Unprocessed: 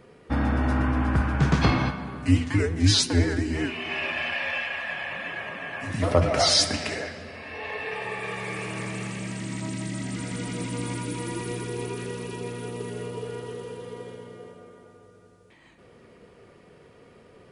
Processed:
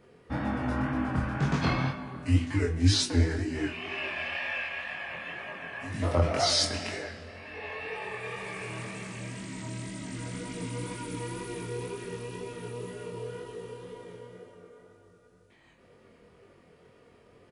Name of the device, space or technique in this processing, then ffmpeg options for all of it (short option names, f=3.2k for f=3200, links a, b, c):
double-tracked vocal: -filter_complex "[0:a]asplit=2[a][b];[b]adelay=23,volume=-7dB[c];[a][c]amix=inputs=2:normalize=0,flanger=delay=19.5:depth=5.5:speed=2,volume=-3dB"